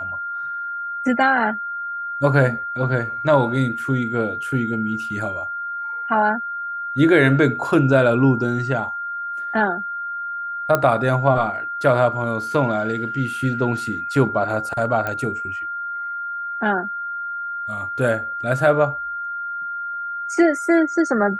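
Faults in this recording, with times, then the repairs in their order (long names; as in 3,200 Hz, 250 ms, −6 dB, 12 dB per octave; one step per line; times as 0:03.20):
whistle 1,400 Hz −25 dBFS
0:10.75: click −5 dBFS
0:15.07: click −12 dBFS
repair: click removal
notch filter 1,400 Hz, Q 30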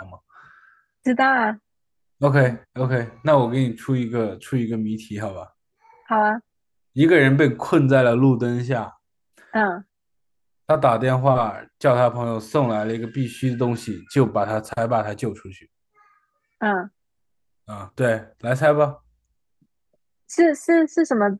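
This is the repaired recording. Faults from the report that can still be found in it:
none of them is left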